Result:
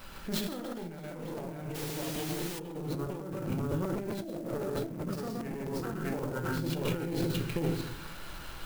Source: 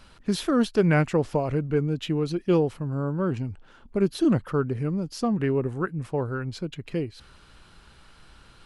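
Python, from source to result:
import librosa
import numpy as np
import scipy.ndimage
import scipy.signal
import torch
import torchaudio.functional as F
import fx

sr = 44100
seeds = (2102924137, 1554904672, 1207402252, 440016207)

y = fx.diode_clip(x, sr, knee_db=-24.5)
y = fx.low_shelf(y, sr, hz=160.0, db=-5.5)
y = fx.echo_multitap(y, sr, ms=(58, 113, 123, 158, 617), db=(-11.0, -13.0, -4.0, -3.5, -3.0))
y = fx.room_shoebox(y, sr, seeds[0], volume_m3=99.0, walls='mixed', distance_m=0.65)
y = fx.over_compress(y, sr, threshold_db=-32.0, ratio=-1.0)
y = fx.quant_dither(y, sr, seeds[1], bits=6, dither='triangular', at=(1.74, 2.58), fade=0.02)
y = fx.peak_eq(y, sr, hz=540.0, db=10.0, octaves=0.71, at=(4.25, 4.88))
y = fx.buffer_crackle(y, sr, first_s=0.98, period_s=0.13, block=256, kind='repeat')
y = fx.clock_jitter(y, sr, seeds[2], jitter_ms=0.03)
y = y * 10.0 ** (-4.0 / 20.0)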